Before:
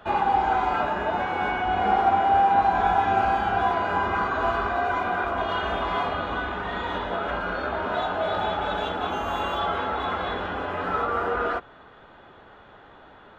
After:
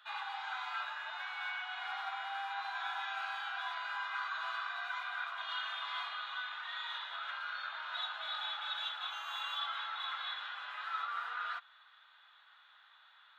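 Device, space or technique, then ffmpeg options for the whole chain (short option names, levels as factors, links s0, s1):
headphones lying on a table: -af "highpass=f=1200:w=0.5412,highpass=f=1200:w=1.3066,equalizer=f=3800:t=o:w=0.39:g=11.5,volume=0.355"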